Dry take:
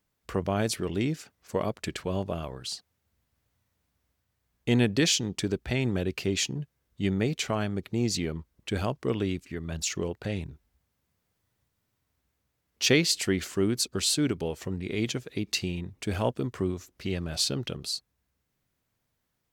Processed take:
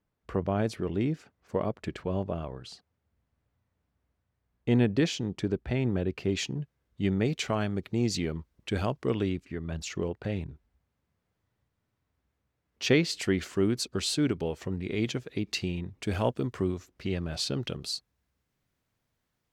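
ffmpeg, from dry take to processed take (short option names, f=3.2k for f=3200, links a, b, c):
-af "asetnsamples=n=441:p=0,asendcmd='6.29 lowpass f 2700;7.25 lowpass f 5100;9.29 lowpass f 2100;13.15 lowpass f 3600;16.03 lowpass f 6700;16.78 lowpass f 3200;17.54 lowpass f 6700',lowpass=f=1.3k:p=1"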